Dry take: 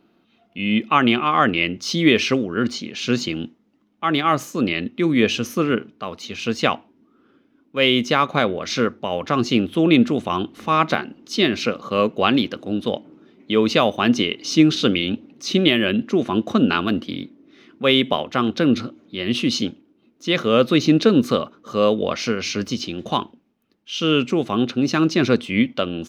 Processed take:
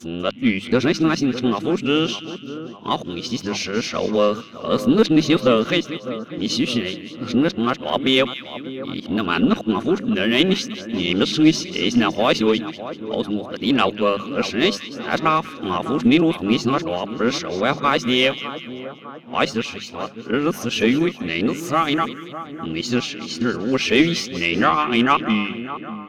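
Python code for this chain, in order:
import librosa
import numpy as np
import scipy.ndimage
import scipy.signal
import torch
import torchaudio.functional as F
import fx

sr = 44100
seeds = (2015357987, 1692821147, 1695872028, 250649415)

y = np.flip(x).copy()
y = fx.hum_notches(y, sr, base_hz=50, count=4)
y = fx.echo_split(y, sr, split_hz=1500.0, low_ms=604, high_ms=192, feedback_pct=52, wet_db=-13.0)
y = fx.cheby_harmonics(y, sr, harmonics=(4,), levels_db=(-25,), full_scale_db=-1.0)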